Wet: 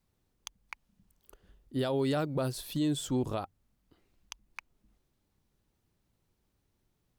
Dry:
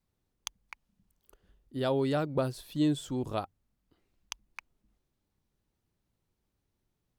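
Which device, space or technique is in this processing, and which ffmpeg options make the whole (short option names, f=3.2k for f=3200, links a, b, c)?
stacked limiters: -filter_complex "[0:a]asettb=1/sr,asplit=3[a][b][c];[a]atrim=end=1.794[d];[b]atrim=start=1.79:end=3.08,asetpts=PTS-STARTPTS,afade=t=in:d=0.004:c=qsin,afade=t=out:st=1.286:d=0.004:c=qsin,highshelf=f=4.6k:g=5.5[e];[c]atrim=start=3.076[f];[d][e]acrossfade=d=0.004:c1=hsin:c2=qsin[g];[g][f]acrossfade=d=0.004:c1=qsin:c2=hsin,alimiter=limit=-22.5dB:level=0:latency=1:release=44,alimiter=level_in=2.5dB:limit=-24dB:level=0:latency=1:release=252,volume=-2.5dB,volume=4dB"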